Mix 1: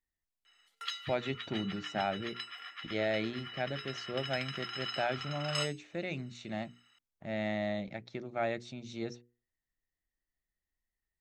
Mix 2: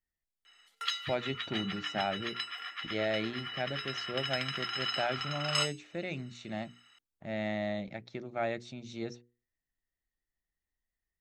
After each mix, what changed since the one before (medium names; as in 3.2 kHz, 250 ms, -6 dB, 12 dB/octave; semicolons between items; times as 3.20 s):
background +5.0 dB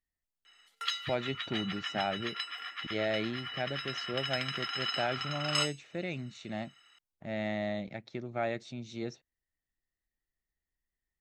master: remove hum notches 60/120/180/240/300/360/420/480 Hz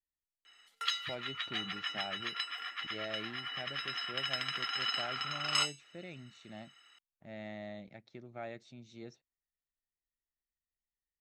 speech -10.5 dB